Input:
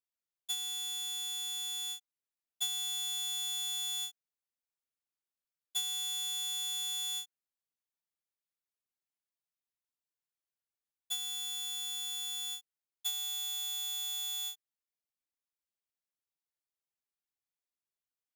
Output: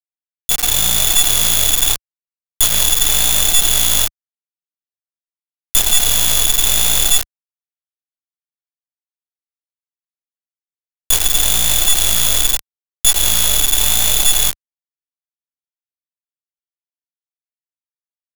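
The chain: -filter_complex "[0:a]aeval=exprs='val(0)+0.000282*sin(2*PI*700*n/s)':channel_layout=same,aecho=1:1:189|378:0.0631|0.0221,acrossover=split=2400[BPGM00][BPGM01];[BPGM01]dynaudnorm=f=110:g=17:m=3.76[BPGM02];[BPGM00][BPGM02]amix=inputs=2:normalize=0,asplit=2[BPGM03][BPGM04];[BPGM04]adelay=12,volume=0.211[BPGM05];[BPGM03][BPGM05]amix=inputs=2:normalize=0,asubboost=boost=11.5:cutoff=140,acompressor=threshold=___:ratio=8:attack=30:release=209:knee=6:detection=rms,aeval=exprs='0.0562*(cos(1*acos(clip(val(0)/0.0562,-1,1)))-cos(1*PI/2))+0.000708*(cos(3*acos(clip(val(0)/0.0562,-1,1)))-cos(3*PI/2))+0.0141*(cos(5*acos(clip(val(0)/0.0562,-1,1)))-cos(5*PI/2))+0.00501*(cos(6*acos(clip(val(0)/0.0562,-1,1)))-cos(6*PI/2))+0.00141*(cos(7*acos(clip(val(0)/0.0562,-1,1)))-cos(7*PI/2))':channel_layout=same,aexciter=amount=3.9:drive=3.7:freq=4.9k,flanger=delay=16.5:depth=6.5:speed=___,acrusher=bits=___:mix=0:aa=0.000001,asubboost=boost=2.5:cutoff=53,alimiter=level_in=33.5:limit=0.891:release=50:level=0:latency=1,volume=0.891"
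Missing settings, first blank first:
0.00891, 0.84, 4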